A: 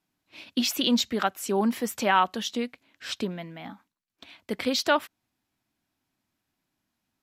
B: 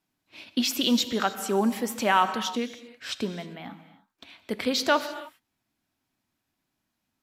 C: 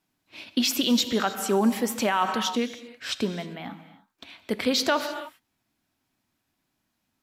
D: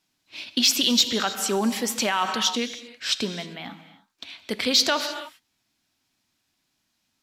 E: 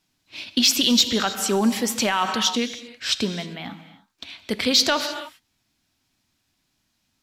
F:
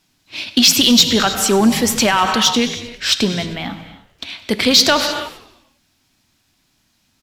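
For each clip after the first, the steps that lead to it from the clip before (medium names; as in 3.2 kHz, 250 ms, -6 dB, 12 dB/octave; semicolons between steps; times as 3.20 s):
gated-style reverb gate 340 ms flat, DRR 11 dB
peak limiter -16 dBFS, peak gain reduction 7.5 dB; trim +3 dB
peaking EQ 4.9 kHz +10.5 dB 2.3 oct; saturation -5.5 dBFS, distortion -23 dB; trim -2 dB
bass shelf 140 Hz +9.5 dB; trim +1.5 dB
in parallel at -5 dB: saturation -23 dBFS, distortion -7 dB; on the sum: frequency-shifting echo 99 ms, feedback 58%, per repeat -70 Hz, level -18.5 dB; trim +5 dB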